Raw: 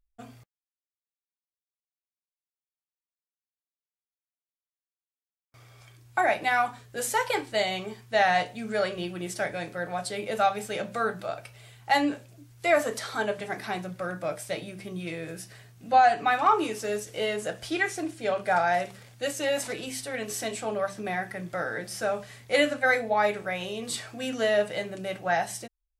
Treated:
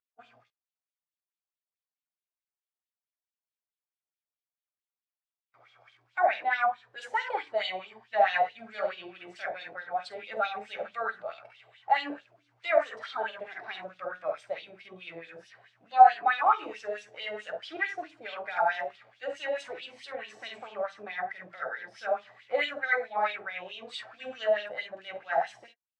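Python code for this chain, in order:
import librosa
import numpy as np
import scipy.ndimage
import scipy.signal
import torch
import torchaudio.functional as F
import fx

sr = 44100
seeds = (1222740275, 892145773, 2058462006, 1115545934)

y = fx.spec_quant(x, sr, step_db=15)
y = fx.air_absorb(y, sr, metres=81.0)
y = fx.room_early_taps(y, sr, ms=(48, 66), db=(-5.0, -9.5))
y = fx.wah_lfo(y, sr, hz=4.6, low_hz=670.0, high_hz=3500.0, q=2.9)
y = F.gain(torch.from_numpy(y), 3.0).numpy()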